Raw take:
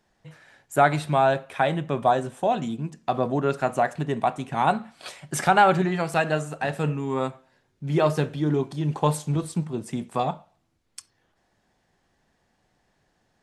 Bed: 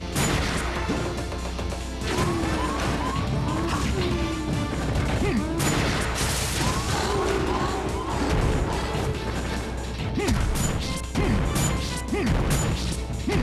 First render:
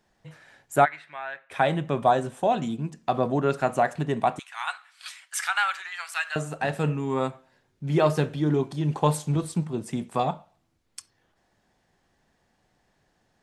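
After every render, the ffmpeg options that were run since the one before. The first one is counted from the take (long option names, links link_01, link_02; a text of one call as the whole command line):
ffmpeg -i in.wav -filter_complex "[0:a]asplit=3[link_01][link_02][link_03];[link_01]afade=type=out:start_time=0.84:duration=0.02[link_04];[link_02]bandpass=frequency=1900:width_type=q:width=3.8,afade=type=in:start_time=0.84:duration=0.02,afade=type=out:start_time=1.5:duration=0.02[link_05];[link_03]afade=type=in:start_time=1.5:duration=0.02[link_06];[link_04][link_05][link_06]amix=inputs=3:normalize=0,asettb=1/sr,asplit=3[link_07][link_08][link_09];[link_07]atrim=end=4.394[link_10];[link_08]atrim=start=4.39:end=6.36,asetpts=PTS-STARTPTS,afade=type=in:duration=0.004:curve=qsin,afade=type=out:start_time=1.966:duration=0.004:curve=qsin,highpass=frequency=1300:width=0.5412,highpass=frequency=1300:width=1.3066[link_11];[link_09]atrim=start=6.356[link_12];[link_10][link_11]acrossfade=duration=0.004:curve1=hsin:curve2=qsin[link_13];[link_13][link_12]acrossfade=duration=0.004:curve1=qsin:curve2=hsin" out.wav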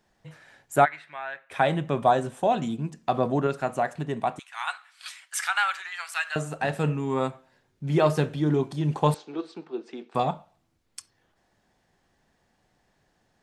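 ffmpeg -i in.wav -filter_complex "[0:a]asettb=1/sr,asplit=3[link_01][link_02][link_03];[link_01]atrim=end=9.144[link_04];[link_02]atrim=start=9.14:end=10.15,asetpts=PTS-STARTPTS,afade=type=in:duration=0.004:curve=qsin,afade=type=out:start_time=1.006:duration=0.004:curve=qsin,highpass=frequency=340:width=0.5412,highpass=frequency=340:width=1.3066,equalizer=frequency=350:width_type=q:width=4:gain=3,equalizer=frequency=590:width_type=q:width=4:gain=-8,equalizer=frequency=1000:width_type=q:width=4:gain=-6,equalizer=frequency=2000:width_type=q:width=4:gain=-6,equalizer=frequency=3200:width_type=q:width=4:gain=-5,lowpass=frequency=4300:width=0.5412,lowpass=frequency=4300:width=1.3066[link_05];[link_03]atrim=start=10.146[link_06];[link_04][link_05]acrossfade=duration=0.004:curve1=hsin:curve2=qsin[link_07];[link_07][link_06]acrossfade=duration=0.004:curve1=qsin:curve2=hsin,asplit=3[link_08][link_09][link_10];[link_08]atrim=end=3.472[link_11];[link_09]atrim=start=3.468:end=4.532,asetpts=PTS-STARTPTS,volume=-3.5dB[link_12];[link_10]atrim=start=4.528[link_13];[link_11][link_12]acrossfade=duration=0.004:curve1=hsin:curve2=hsin[link_14];[link_14][link_13]acrossfade=duration=0.004:curve1=hsin:curve2=hsin" out.wav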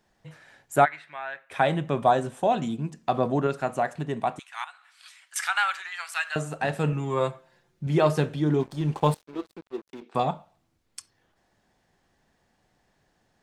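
ffmpeg -i in.wav -filter_complex "[0:a]asettb=1/sr,asplit=3[link_01][link_02][link_03];[link_01]atrim=end=4.644[link_04];[link_02]atrim=start=4.64:end=5.36,asetpts=PTS-STARTPTS,afade=type=in:duration=0.004:curve=qsin,afade=type=out:start_time=0.716:duration=0.004:curve=qsin,acompressor=threshold=-53dB:ratio=2:attack=3.2:release=140:knee=1:detection=peak[link_05];[link_03]atrim=start=5.356[link_06];[link_04][link_05]acrossfade=duration=0.004:curve1=hsin:curve2=qsin[link_07];[link_07][link_06]acrossfade=duration=0.004:curve1=qsin:curve2=hsin,asettb=1/sr,asplit=3[link_08][link_09][link_10];[link_08]atrim=end=6.924[link_11];[link_09]atrim=start=6.92:end=7.87,asetpts=PTS-STARTPTS,afade=type=in:duration=0.004:curve=qsin,afade=type=out:start_time=0.946:duration=0.004:curve=qsin,aecho=1:1:5.8:0.61,atrim=end_sample=41895[link_12];[link_10]atrim=start=7.866[link_13];[link_11][link_12]acrossfade=duration=0.004:curve1=hsin:curve2=qsin[link_14];[link_14][link_13]acrossfade=duration=0.004:curve1=qsin:curve2=hsin,asplit=3[link_15][link_16][link_17];[link_15]afade=type=out:start_time=8.59:duration=0.02[link_18];[link_16]aeval=exprs='sgn(val(0))*max(abs(val(0))-0.00668,0)':channel_layout=same,afade=type=in:start_time=8.59:duration=0.02,afade=type=out:start_time=10.01:duration=0.02[link_19];[link_17]afade=type=in:start_time=10.01:duration=0.02[link_20];[link_18][link_19][link_20]amix=inputs=3:normalize=0" out.wav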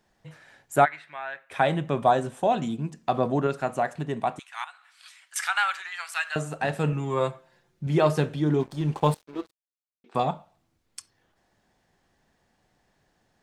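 ffmpeg -i in.wav -filter_complex "[0:a]asplit=3[link_01][link_02][link_03];[link_01]atrim=end=9.51,asetpts=PTS-STARTPTS,afade=type=out:start_time=9.506:duration=0.004:curve=hsin[link_04];[link_02]atrim=start=9.51:end=10.04,asetpts=PTS-STARTPTS,volume=0[link_05];[link_03]atrim=start=10.04,asetpts=PTS-STARTPTS,afade=type=in:duration=0.004:curve=hsin[link_06];[link_04][link_05][link_06]concat=n=3:v=0:a=1" out.wav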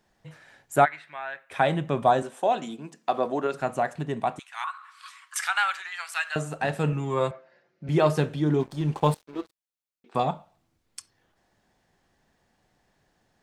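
ffmpeg -i in.wav -filter_complex "[0:a]asettb=1/sr,asplit=3[link_01][link_02][link_03];[link_01]atrim=end=2.224[link_04];[link_02]atrim=start=2.22:end=3.54,asetpts=PTS-STARTPTS,afade=type=in:duration=0.004:curve=qsin,afade=type=out:start_time=1.316:duration=0.004:curve=qsin,highpass=330[link_05];[link_03]atrim=start=3.536[link_06];[link_04][link_05]acrossfade=duration=0.004:curve1=hsin:curve2=qsin[link_07];[link_07][link_06]acrossfade=duration=0.004:curve1=qsin:curve2=hsin,asettb=1/sr,asplit=3[link_08][link_09][link_10];[link_08]atrim=end=4.644[link_11];[link_09]atrim=start=4.64:end=5.37,asetpts=PTS-STARTPTS,afade=type=in:duration=0.004:curve=qsin,afade=type=out:start_time=0.726:duration=0.004:curve=qsin,highpass=frequency=1100:width_type=q:width=12[link_12];[link_10]atrim=start=5.366[link_13];[link_11][link_12]acrossfade=duration=0.004:curve1=hsin:curve2=qsin[link_14];[link_14][link_13]acrossfade=duration=0.004:curve1=qsin:curve2=hsin,asettb=1/sr,asplit=3[link_15][link_16][link_17];[link_15]atrim=end=7.314[link_18];[link_16]atrim=start=7.31:end=7.89,asetpts=PTS-STARTPTS,afade=type=in:duration=0.004:curve=qsin,afade=type=out:start_time=0.576:duration=0.004:curve=qsin,highpass=220,equalizer=frequency=590:width_type=q:width=4:gain=9,equalizer=frequency=940:width_type=q:width=4:gain=-5,equalizer=frequency=1400:width_type=q:width=4:gain=3,equalizer=frequency=2000:width_type=q:width=4:gain=4,equalizer=frequency=3500:width_type=q:width=4:gain=-8,lowpass=frequency=5100:width=0.5412,lowpass=frequency=5100:width=1.3066[link_19];[link_17]atrim=start=7.886[link_20];[link_18][link_19]acrossfade=duration=0.004:curve1=hsin:curve2=qsin[link_21];[link_21][link_20]acrossfade=duration=0.004:curve1=qsin:curve2=hsin" out.wav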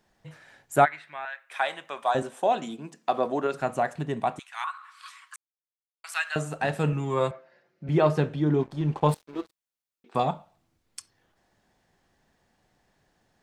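ffmpeg -i in.wav -filter_complex "[0:a]asettb=1/sr,asplit=3[link_01][link_02][link_03];[link_01]atrim=end=1.254[link_04];[link_02]atrim=start=1.25:end=2.15,asetpts=PTS-STARTPTS,afade=type=in:duration=0.004:curve=qsin,afade=type=out:start_time=0.896:duration=0.004:curve=qsin,highpass=930[link_05];[link_03]atrim=start=2.146[link_06];[link_04][link_05]acrossfade=duration=0.004:curve1=hsin:curve2=qsin[link_07];[link_07][link_06]acrossfade=duration=0.004:curve1=qsin:curve2=hsin,asettb=1/sr,asplit=3[link_08][link_09][link_10];[link_08]atrim=end=7.844[link_11];[link_09]atrim=start=7.84:end=9.09,asetpts=PTS-STARTPTS,afade=type=in:duration=0.004:curve=qsin,afade=type=out:start_time=1.246:duration=0.004:curve=qsin,lowpass=frequency=2800:poles=1[link_12];[link_10]atrim=start=9.086[link_13];[link_11][link_12]acrossfade=duration=0.004:curve1=hsin:curve2=qsin[link_14];[link_14][link_13]acrossfade=duration=0.004:curve1=qsin:curve2=hsin,asplit=3[link_15][link_16][link_17];[link_15]atrim=end=5.36,asetpts=PTS-STARTPTS,afade=type=out:start_time=5.356:duration=0.004:curve=hsin[link_18];[link_16]atrim=start=5.36:end=6.04,asetpts=PTS-STARTPTS,volume=0[link_19];[link_17]atrim=start=6.04,asetpts=PTS-STARTPTS,afade=type=in:duration=0.004:curve=hsin[link_20];[link_18][link_19][link_20]concat=n=3:v=0:a=1" out.wav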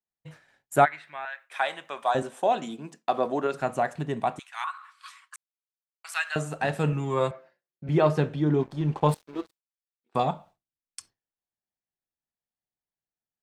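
ffmpeg -i in.wav -af "agate=range=-33dB:threshold=-45dB:ratio=3:detection=peak" out.wav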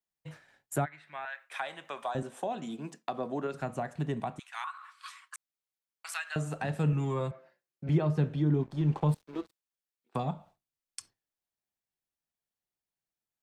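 ffmpeg -i in.wav -filter_complex "[0:a]acrossover=split=240[link_01][link_02];[link_02]acompressor=threshold=-36dB:ratio=3[link_03];[link_01][link_03]amix=inputs=2:normalize=0" out.wav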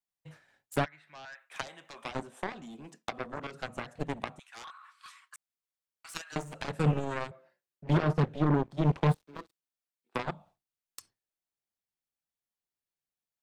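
ffmpeg -i in.wav -af "aeval=exprs='0.15*(cos(1*acos(clip(val(0)/0.15,-1,1)))-cos(1*PI/2))+0.0168*(cos(5*acos(clip(val(0)/0.15,-1,1)))-cos(5*PI/2))+0.0473*(cos(7*acos(clip(val(0)/0.15,-1,1)))-cos(7*PI/2))':channel_layout=same" out.wav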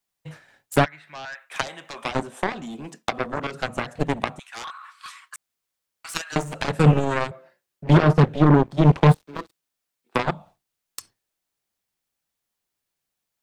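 ffmpeg -i in.wav -af "volume=11dB" out.wav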